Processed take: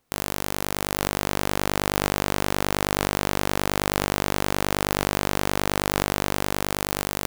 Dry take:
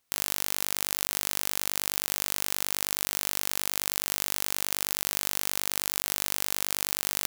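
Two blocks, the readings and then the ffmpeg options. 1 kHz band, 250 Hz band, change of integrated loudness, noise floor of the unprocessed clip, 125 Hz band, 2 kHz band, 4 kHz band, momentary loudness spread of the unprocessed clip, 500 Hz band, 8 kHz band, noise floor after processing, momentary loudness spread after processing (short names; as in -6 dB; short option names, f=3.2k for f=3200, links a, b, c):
+13.0 dB, +18.0 dB, +2.5 dB, -31 dBFS, +18.5 dB, +7.5 dB, +2.0 dB, 0 LU, +16.5 dB, -2.0 dB, -29 dBFS, 3 LU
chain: -af "tiltshelf=f=1.3k:g=7.5,dynaudnorm=f=240:g=9:m=11.5dB,aeval=exprs='clip(val(0),-1,0.335)':c=same,volume=7dB"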